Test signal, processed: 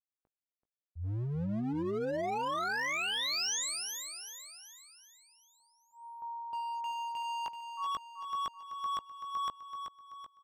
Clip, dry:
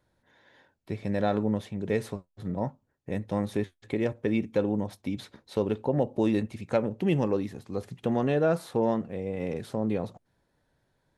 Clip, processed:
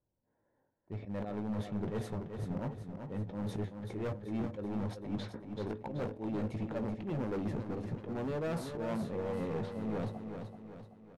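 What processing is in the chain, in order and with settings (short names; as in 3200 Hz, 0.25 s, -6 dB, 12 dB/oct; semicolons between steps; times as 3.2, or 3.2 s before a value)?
low-pass opened by the level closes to 990 Hz, open at -25.5 dBFS; gate -53 dBFS, range -18 dB; auto swell 0.148 s; tilt shelf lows +6 dB, about 1500 Hz; doubler 19 ms -9.5 dB; reverse; compressor 12:1, threshold -29 dBFS; reverse; hard clip -33 dBFS; dynamic EQ 6000 Hz, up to +3 dB, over -55 dBFS, Q 1.1; on a send: feedback echo 0.382 s, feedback 47%, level -7 dB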